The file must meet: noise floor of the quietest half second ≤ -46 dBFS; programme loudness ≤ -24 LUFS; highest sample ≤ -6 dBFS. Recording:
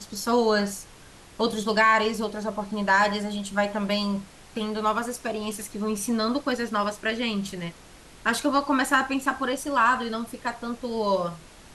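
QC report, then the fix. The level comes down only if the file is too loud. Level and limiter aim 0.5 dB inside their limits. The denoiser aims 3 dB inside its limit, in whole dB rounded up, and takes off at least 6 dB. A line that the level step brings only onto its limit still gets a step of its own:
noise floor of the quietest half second -49 dBFS: pass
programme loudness -25.5 LUFS: pass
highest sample -9.0 dBFS: pass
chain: none needed

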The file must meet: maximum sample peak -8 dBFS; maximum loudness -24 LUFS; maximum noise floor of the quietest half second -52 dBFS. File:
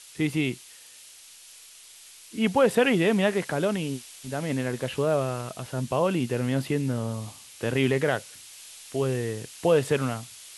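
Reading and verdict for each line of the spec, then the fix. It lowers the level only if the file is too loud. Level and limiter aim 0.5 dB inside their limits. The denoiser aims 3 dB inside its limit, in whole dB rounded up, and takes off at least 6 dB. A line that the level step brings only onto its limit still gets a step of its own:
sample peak -9.5 dBFS: pass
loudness -26.5 LUFS: pass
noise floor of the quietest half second -49 dBFS: fail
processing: noise reduction 6 dB, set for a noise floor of -49 dBFS

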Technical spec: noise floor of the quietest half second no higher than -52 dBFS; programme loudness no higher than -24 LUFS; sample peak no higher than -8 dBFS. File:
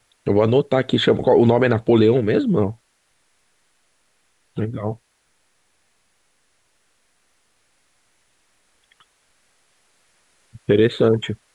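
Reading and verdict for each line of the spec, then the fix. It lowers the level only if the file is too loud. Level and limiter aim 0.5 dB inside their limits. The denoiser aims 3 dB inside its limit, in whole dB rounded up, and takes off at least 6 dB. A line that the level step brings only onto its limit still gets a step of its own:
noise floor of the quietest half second -65 dBFS: pass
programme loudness -18.0 LUFS: fail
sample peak -5.0 dBFS: fail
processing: trim -6.5 dB

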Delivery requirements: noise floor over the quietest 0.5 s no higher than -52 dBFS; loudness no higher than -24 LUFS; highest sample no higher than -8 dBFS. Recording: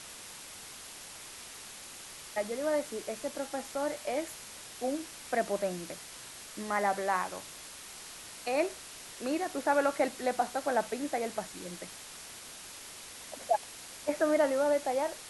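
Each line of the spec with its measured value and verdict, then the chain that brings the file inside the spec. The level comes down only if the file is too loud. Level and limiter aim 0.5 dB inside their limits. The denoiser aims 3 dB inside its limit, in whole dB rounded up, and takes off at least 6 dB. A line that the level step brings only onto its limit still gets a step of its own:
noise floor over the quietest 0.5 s -47 dBFS: fail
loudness -34.5 LUFS: pass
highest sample -15.5 dBFS: pass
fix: noise reduction 8 dB, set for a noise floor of -47 dBFS

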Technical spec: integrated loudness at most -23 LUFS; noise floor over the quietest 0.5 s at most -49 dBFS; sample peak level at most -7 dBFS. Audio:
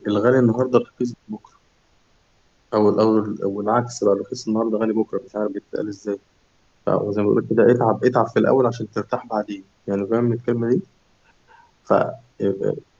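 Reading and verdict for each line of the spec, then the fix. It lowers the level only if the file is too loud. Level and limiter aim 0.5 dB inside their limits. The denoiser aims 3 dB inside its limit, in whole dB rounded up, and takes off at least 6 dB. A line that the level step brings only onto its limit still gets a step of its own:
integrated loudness -21.0 LUFS: fail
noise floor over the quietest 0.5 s -60 dBFS: pass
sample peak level -3.5 dBFS: fail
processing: trim -2.5 dB; peak limiter -7.5 dBFS

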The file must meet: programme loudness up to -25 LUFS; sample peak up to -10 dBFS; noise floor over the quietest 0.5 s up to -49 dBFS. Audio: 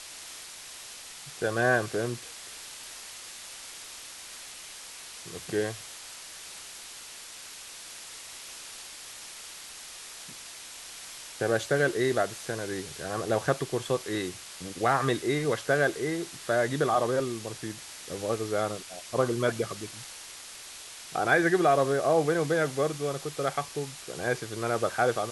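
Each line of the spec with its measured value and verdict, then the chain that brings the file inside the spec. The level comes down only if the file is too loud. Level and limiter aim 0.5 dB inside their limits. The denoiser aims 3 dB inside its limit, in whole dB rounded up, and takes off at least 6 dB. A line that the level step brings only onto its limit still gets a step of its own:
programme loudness -29.0 LUFS: pass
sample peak -11.0 dBFS: pass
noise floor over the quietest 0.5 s -45 dBFS: fail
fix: noise reduction 7 dB, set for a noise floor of -45 dBFS

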